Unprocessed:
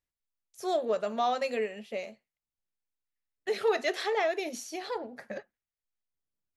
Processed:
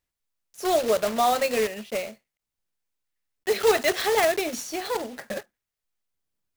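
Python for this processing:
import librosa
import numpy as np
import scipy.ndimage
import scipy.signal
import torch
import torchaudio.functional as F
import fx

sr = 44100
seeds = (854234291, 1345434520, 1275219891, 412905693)

y = fx.block_float(x, sr, bits=3)
y = y * librosa.db_to_amplitude(6.5)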